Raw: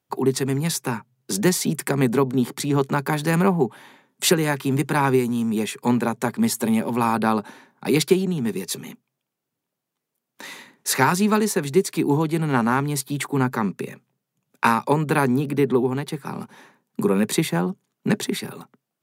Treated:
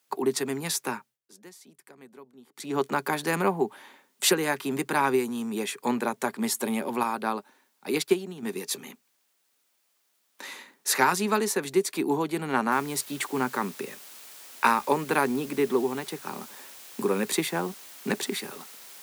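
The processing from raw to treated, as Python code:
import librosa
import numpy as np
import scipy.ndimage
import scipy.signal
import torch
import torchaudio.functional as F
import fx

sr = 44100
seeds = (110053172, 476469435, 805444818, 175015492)

y = fx.upward_expand(x, sr, threshold_db=-39.0, expansion=1.5, at=(7.03, 8.43))
y = fx.noise_floor_step(y, sr, seeds[0], at_s=12.72, before_db=-69, after_db=-44, tilt_db=0.0)
y = fx.edit(y, sr, fx.fade_down_up(start_s=0.91, length_s=1.89, db=-24.0, fade_s=0.27), tone=tone)
y = scipy.signal.sosfilt(scipy.signal.butter(2, 260.0, 'highpass', fs=sr, output='sos'), y)
y = fx.low_shelf(y, sr, hz=340.0, db=-3.0)
y = y * 10.0 ** (-2.5 / 20.0)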